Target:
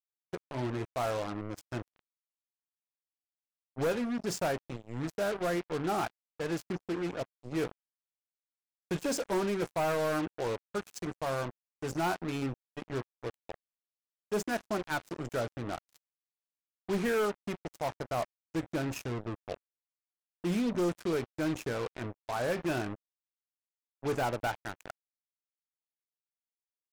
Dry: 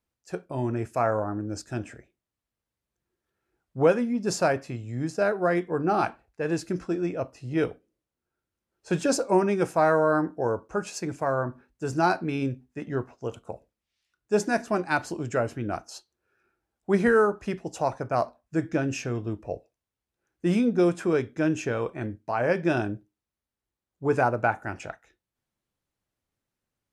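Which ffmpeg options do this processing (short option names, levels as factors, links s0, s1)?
-af "acrusher=bits=4:mix=0:aa=0.5,volume=8.91,asoftclip=hard,volume=0.112,volume=0.473"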